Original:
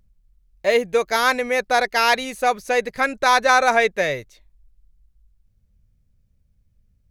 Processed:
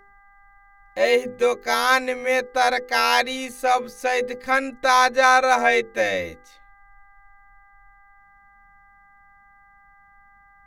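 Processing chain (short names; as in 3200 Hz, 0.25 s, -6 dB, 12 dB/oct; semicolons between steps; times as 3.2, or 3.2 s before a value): granular stretch 1.5×, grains 23 ms; buzz 400 Hz, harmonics 5, -53 dBFS -1 dB/oct; notches 50/100/150/200/250/300/350/400/450/500 Hz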